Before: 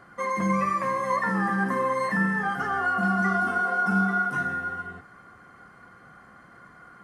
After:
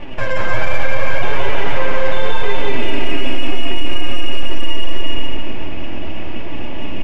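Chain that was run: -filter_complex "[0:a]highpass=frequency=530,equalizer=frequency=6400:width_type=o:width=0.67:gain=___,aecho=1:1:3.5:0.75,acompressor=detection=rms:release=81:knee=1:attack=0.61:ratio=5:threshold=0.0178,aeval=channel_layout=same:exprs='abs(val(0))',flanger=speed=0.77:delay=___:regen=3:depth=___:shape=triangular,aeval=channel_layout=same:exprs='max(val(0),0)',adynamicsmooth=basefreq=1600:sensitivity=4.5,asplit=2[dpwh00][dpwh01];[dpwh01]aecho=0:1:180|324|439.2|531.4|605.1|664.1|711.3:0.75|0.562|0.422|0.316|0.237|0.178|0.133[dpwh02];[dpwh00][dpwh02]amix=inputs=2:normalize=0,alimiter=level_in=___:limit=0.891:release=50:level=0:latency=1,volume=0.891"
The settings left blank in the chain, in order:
10.5, 6.7, 5.8, 25.1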